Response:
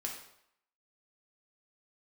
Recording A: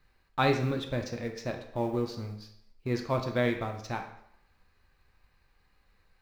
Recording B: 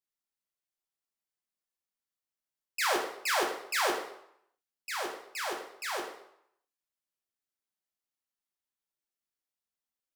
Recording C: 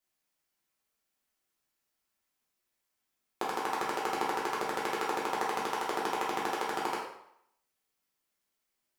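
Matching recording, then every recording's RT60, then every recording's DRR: B; 0.75, 0.75, 0.75 seconds; 3.5, −0.5, −6.0 decibels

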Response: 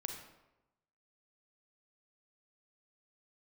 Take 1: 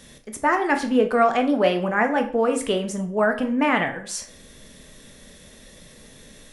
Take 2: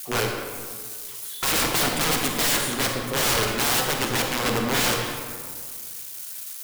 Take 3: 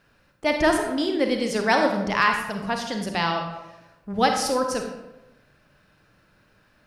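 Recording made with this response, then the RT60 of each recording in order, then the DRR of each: 3; 0.50, 1.9, 1.0 seconds; 4.5, 1.5, 3.5 decibels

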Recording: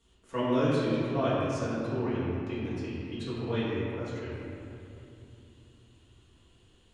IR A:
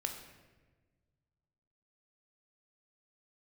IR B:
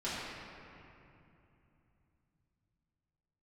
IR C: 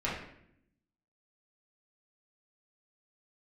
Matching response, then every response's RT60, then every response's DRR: B; 1.3, 2.9, 0.70 seconds; 3.5, −11.5, −8.0 decibels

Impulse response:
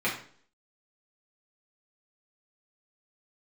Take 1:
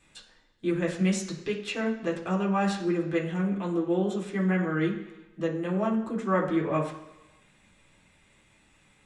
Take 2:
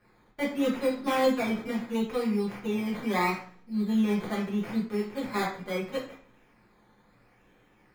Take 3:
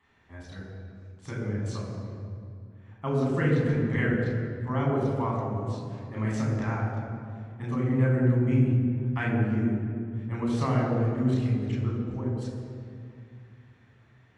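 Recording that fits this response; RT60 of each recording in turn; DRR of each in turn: 2; 1.0, 0.50, 2.3 seconds; −4.0, −7.5, −4.0 decibels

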